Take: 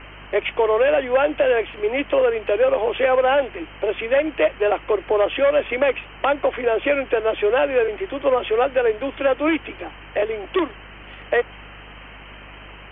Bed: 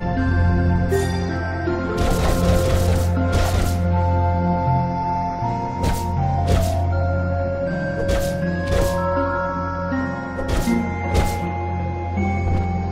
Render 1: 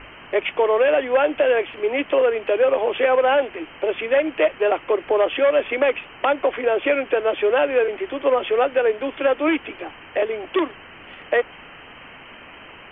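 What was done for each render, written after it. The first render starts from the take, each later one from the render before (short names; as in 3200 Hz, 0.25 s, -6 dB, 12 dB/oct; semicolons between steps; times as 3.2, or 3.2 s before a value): de-hum 50 Hz, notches 4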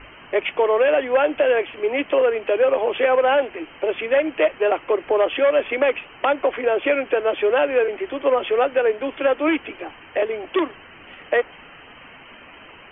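denoiser 6 dB, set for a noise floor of -43 dBFS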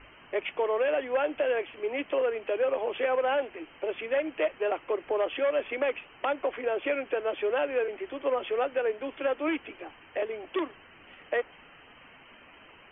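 gain -9.5 dB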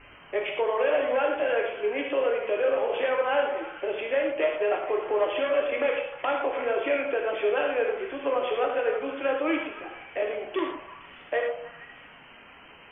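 delay with a stepping band-pass 0.155 s, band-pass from 710 Hz, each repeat 0.7 oct, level -7.5 dB; non-linear reverb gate 0.14 s flat, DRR 0 dB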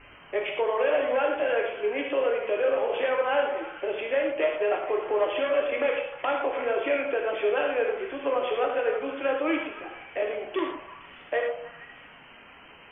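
nothing audible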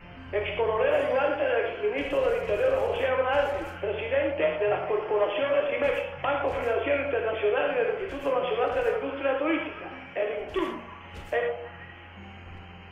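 add bed -25 dB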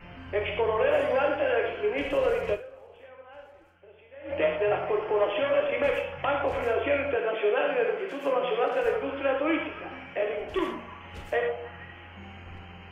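2.53–4.33 dip -23 dB, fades 0.42 s exponential; 7.16–8.84 steep high-pass 160 Hz 48 dB/oct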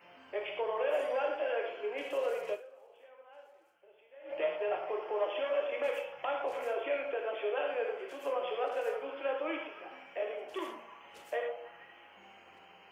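HPF 620 Hz 12 dB/oct; bell 1800 Hz -10 dB 2.5 oct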